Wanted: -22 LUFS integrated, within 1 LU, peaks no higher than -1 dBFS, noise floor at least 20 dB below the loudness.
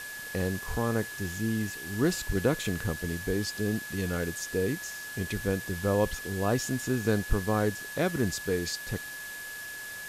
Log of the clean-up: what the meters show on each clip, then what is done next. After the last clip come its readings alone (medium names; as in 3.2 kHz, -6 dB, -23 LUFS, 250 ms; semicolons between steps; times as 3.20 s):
steady tone 1.7 kHz; tone level -39 dBFS; noise floor -40 dBFS; noise floor target -51 dBFS; loudness -30.5 LUFS; peak level -11.5 dBFS; loudness target -22.0 LUFS
-> band-stop 1.7 kHz, Q 30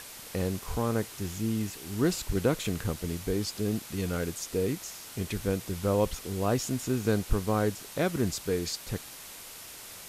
steady tone not found; noise floor -45 dBFS; noise floor target -51 dBFS
-> noise reduction 6 dB, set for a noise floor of -45 dBFS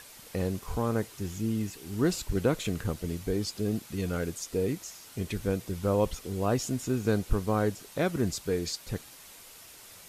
noise floor -50 dBFS; noise floor target -51 dBFS
-> noise reduction 6 dB, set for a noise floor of -50 dBFS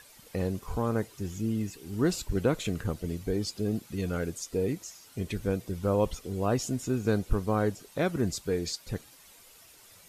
noise floor -55 dBFS; loudness -31.0 LUFS; peak level -12.0 dBFS; loudness target -22.0 LUFS
-> trim +9 dB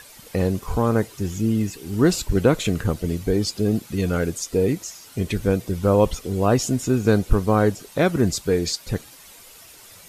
loudness -22.0 LUFS; peak level -3.0 dBFS; noise floor -46 dBFS